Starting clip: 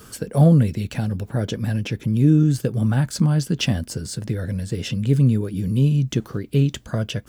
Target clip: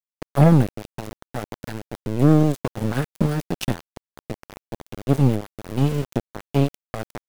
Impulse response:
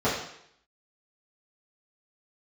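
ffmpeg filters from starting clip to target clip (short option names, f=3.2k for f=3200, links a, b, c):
-af "aeval=exprs='0.631*(cos(1*acos(clip(val(0)/0.631,-1,1)))-cos(1*PI/2))+0.2*(cos(2*acos(clip(val(0)/0.631,-1,1)))-cos(2*PI/2))+0.00501*(cos(5*acos(clip(val(0)/0.631,-1,1)))-cos(5*PI/2))+0.0794*(cos(7*acos(clip(val(0)/0.631,-1,1)))-cos(7*PI/2))+0.00891*(cos(8*acos(clip(val(0)/0.631,-1,1)))-cos(8*PI/2))':c=same,aeval=exprs='val(0)*gte(abs(val(0)),0.0531)':c=same,volume=-1.5dB"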